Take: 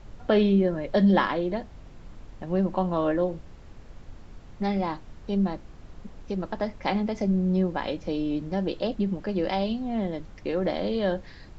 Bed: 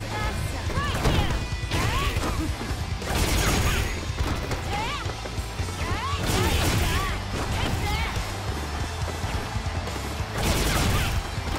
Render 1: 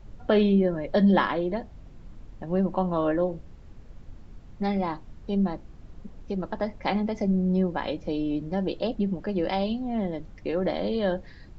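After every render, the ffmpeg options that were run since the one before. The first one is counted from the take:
-af "afftdn=nr=6:nf=-47"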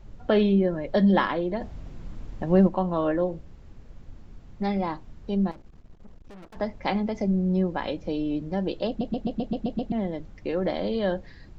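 -filter_complex "[0:a]asplit=3[a][b][c];[a]afade=t=out:st=1.6:d=0.02[d];[b]acontrast=69,afade=t=in:st=1.6:d=0.02,afade=t=out:st=2.67:d=0.02[e];[c]afade=t=in:st=2.67:d=0.02[f];[d][e][f]amix=inputs=3:normalize=0,asettb=1/sr,asplit=3[g][h][i];[g]atrim=end=5.514[j];[h]atrim=start=5.51:end=6.56,asetpts=PTS-STARTPTS,afade=t=in:d=0.004:c=qsin,afade=t=out:st=1.046:d=0.004:c=qsin,aeval=exprs='(tanh(158*val(0)+0.75)-tanh(0.75))/158':c=same[k];[i]atrim=start=6.556[l];[j][k]acrossfade=d=0.004:c1=hsin:c2=qsin[m];[m][l]acrossfade=d=0.004:c1=qsin:c2=hsin,asplit=9[n][o][p][q][r][s][t][u][v];[n]atrim=end=9.012[w];[o]atrim=start=8.878:end=9.012[x];[p]atrim=start=8.878:end=9.012[y];[q]atrim=start=8.878:end=9.012[z];[r]atrim=start=8.878:end=9.012[aa];[s]atrim=start=8.878:end=9.012[ab];[t]atrim=start=8.878:end=9.012[ac];[u]atrim=start=8.878:end=9.012[ad];[v]atrim=start=9.918[ae];[w][x]acrossfade=d=0.004:c1=hsin:c2=hsin[af];[af][y]acrossfade=d=0.004:c1=hsin:c2=hsin[ag];[ag][z]acrossfade=d=0.004:c1=hsin:c2=hsin[ah];[ah][aa]acrossfade=d=0.004:c1=hsin:c2=hsin[ai];[ai][ab]acrossfade=d=0.004:c1=hsin:c2=hsin[aj];[aj][ac]acrossfade=d=0.004:c1=hsin:c2=hsin[ak];[ak][ad]acrossfade=d=0.004:c1=hsin:c2=hsin[al];[al][ae]acrossfade=d=0.004:c1=hsin:c2=hsin"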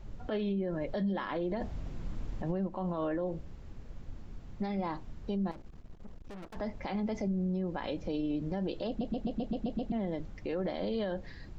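-af "acompressor=threshold=-26dB:ratio=12,alimiter=level_in=2dB:limit=-24dB:level=0:latency=1:release=38,volume=-2dB"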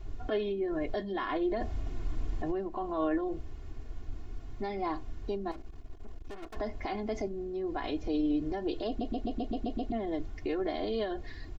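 -af "aecho=1:1:2.8:0.93"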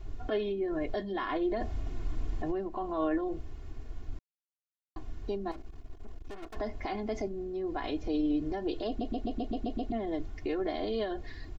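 -filter_complex "[0:a]asplit=3[a][b][c];[a]atrim=end=4.19,asetpts=PTS-STARTPTS,afade=t=out:st=4.186:d=0.004:c=hsin[d];[b]atrim=start=4.19:end=4.96,asetpts=PTS-STARTPTS,volume=0[e];[c]atrim=start=4.96,asetpts=PTS-STARTPTS,afade=t=in:d=0.004:c=hsin[f];[d][e][f]concat=n=3:v=0:a=1"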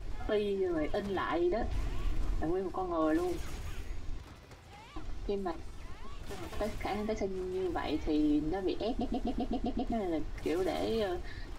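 -filter_complex "[1:a]volume=-24dB[a];[0:a][a]amix=inputs=2:normalize=0"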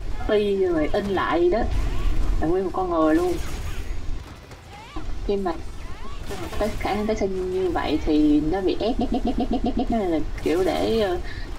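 -af "volume=11dB"

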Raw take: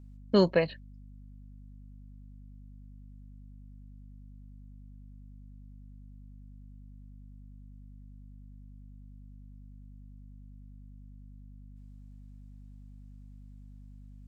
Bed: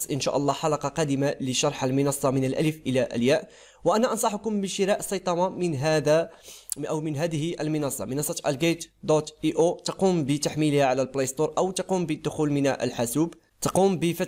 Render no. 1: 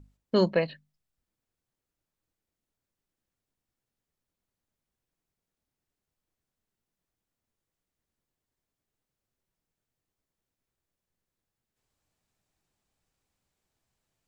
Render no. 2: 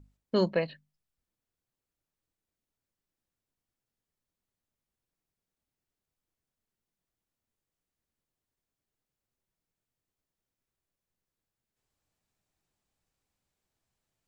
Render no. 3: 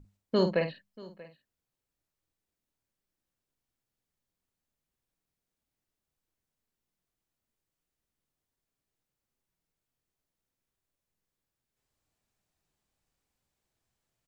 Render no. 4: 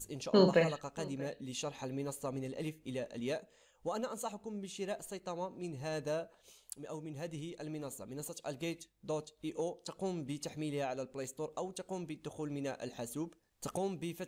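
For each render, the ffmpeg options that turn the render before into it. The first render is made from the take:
-af "bandreject=f=50:t=h:w=6,bandreject=f=100:t=h:w=6,bandreject=f=150:t=h:w=6,bandreject=f=200:t=h:w=6,bandreject=f=250:t=h:w=6"
-af "volume=-3dB"
-filter_complex "[0:a]asplit=2[a][b];[b]adelay=50,volume=-7.5dB[c];[a][c]amix=inputs=2:normalize=0,aecho=1:1:635:0.0891"
-filter_complex "[1:a]volume=-16dB[a];[0:a][a]amix=inputs=2:normalize=0"

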